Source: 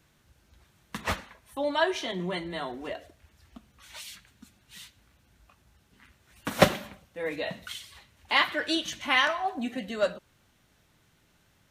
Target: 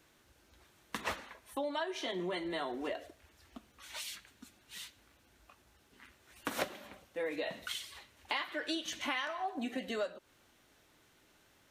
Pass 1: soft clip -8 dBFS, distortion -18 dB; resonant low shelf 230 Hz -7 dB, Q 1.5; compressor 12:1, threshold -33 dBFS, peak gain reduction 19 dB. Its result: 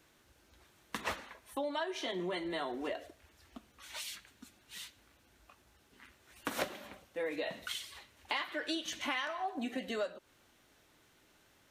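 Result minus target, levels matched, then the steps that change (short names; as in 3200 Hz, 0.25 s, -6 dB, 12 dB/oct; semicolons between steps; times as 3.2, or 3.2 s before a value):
soft clip: distortion +11 dB
change: soft clip -0.5 dBFS, distortion -29 dB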